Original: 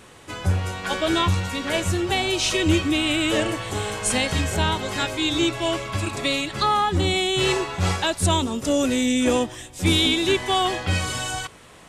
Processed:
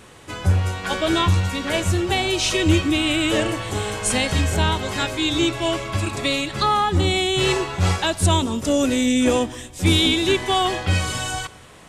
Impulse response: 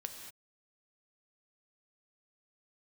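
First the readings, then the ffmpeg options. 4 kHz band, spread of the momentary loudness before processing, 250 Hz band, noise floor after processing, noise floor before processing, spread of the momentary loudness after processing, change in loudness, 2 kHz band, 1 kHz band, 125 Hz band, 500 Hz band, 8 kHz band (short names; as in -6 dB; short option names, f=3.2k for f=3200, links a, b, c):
+1.0 dB, 6 LU, +2.0 dB, -44 dBFS, -47 dBFS, 6 LU, +2.0 dB, +1.0 dB, +1.5 dB, +4.0 dB, +1.5 dB, +1.0 dB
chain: -filter_complex "[0:a]asplit=2[a][b];[1:a]atrim=start_sample=2205,lowshelf=f=330:g=10.5[c];[b][c]afir=irnorm=-1:irlink=0,volume=-13.5dB[d];[a][d]amix=inputs=2:normalize=0"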